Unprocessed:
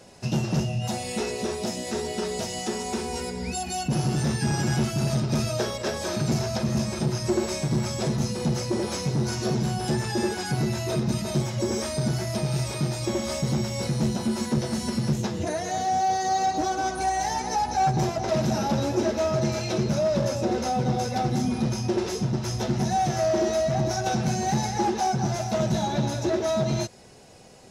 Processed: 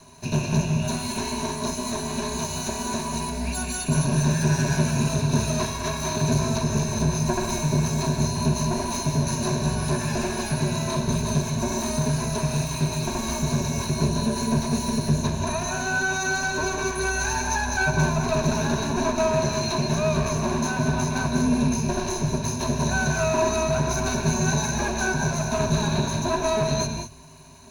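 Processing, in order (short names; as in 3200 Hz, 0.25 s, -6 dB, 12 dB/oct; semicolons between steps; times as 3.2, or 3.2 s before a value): minimum comb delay 0.97 ms; ripple EQ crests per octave 1.5, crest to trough 16 dB; non-linear reverb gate 0.23 s rising, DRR 5 dB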